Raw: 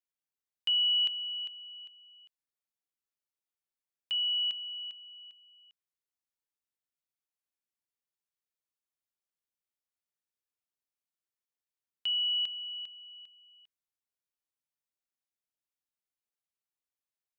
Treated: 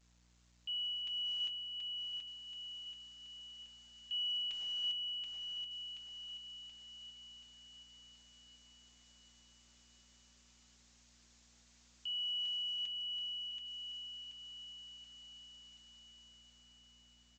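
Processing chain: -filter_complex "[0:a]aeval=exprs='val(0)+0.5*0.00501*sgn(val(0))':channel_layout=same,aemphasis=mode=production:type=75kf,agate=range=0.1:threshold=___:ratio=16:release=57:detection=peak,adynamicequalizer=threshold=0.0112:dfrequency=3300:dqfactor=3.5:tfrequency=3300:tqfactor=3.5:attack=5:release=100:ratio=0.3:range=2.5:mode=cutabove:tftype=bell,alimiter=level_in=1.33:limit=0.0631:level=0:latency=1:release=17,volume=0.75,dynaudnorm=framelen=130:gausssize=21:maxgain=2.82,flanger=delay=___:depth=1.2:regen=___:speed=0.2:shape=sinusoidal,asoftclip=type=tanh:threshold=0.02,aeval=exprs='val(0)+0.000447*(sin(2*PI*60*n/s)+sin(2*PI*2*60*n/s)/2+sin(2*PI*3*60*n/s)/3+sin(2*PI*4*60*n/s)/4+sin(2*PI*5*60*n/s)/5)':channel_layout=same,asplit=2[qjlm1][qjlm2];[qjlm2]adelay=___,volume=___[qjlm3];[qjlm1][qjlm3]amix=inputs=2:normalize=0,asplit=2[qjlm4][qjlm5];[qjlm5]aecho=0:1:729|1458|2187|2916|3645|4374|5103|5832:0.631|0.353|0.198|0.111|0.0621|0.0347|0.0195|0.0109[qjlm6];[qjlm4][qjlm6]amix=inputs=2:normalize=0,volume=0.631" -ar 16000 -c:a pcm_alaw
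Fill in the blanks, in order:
0.0158, 5.2, 18, 18, 0.237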